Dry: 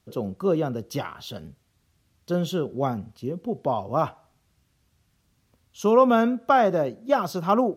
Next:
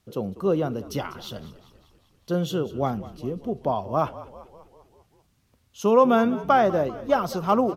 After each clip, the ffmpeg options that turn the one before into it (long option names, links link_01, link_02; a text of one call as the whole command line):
ffmpeg -i in.wav -filter_complex "[0:a]asplit=7[link_01][link_02][link_03][link_04][link_05][link_06][link_07];[link_02]adelay=196,afreqshift=-47,volume=-17dB[link_08];[link_03]adelay=392,afreqshift=-94,volume=-21.6dB[link_09];[link_04]adelay=588,afreqshift=-141,volume=-26.2dB[link_10];[link_05]adelay=784,afreqshift=-188,volume=-30.7dB[link_11];[link_06]adelay=980,afreqshift=-235,volume=-35.3dB[link_12];[link_07]adelay=1176,afreqshift=-282,volume=-39.9dB[link_13];[link_01][link_08][link_09][link_10][link_11][link_12][link_13]amix=inputs=7:normalize=0" out.wav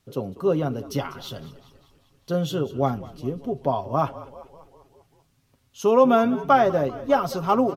ffmpeg -i in.wav -af "aecho=1:1:7.3:0.51" out.wav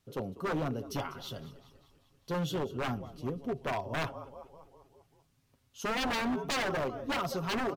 ffmpeg -i in.wav -af "aeval=exprs='0.0944*(abs(mod(val(0)/0.0944+3,4)-2)-1)':channel_layout=same,volume=-6dB" out.wav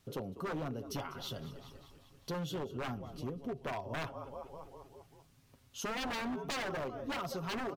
ffmpeg -i in.wav -af "acompressor=threshold=-48dB:ratio=2.5,volume=6dB" out.wav